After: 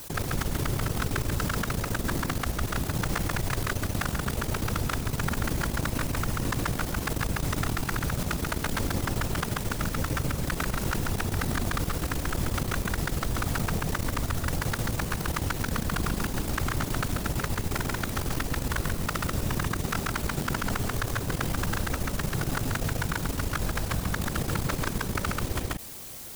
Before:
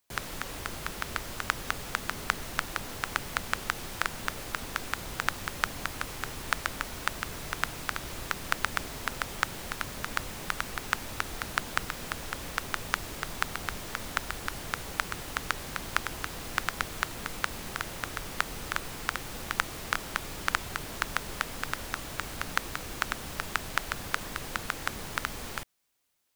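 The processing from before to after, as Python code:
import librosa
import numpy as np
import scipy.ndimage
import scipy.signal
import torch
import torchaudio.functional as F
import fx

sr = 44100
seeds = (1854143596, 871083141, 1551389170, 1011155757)

p1 = fx.whisperise(x, sr, seeds[0])
p2 = np.sign(p1) * np.maximum(np.abs(p1) - 10.0 ** (-51.5 / 20.0), 0.0)
p3 = p1 + (p2 * librosa.db_to_amplitude(-6.0))
p4 = fx.low_shelf(p3, sr, hz=370.0, db=8.0)
p5 = fx.level_steps(p4, sr, step_db=16)
p6 = fx.peak_eq(p5, sr, hz=2200.0, db=-5.5, octaves=2.6)
p7 = p6 + fx.echo_single(p6, sr, ms=137, db=-3.5, dry=0)
p8 = fx.env_flatten(p7, sr, amount_pct=70)
y = p8 * librosa.db_to_amplitude(2.0)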